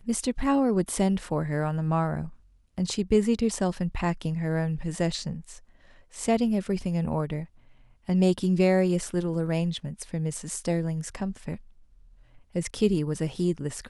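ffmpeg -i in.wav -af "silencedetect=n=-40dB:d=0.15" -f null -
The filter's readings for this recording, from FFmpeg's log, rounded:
silence_start: 2.29
silence_end: 2.78 | silence_duration: 0.49
silence_start: 5.58
silence_end: 6.14 | silence_duration: 0.56
silence_start: 7.45
silence_end: 8.08 | silence_duration: 0.64
silence_start: 11.59
silence_end: 12.55 | silence_duration: 0.96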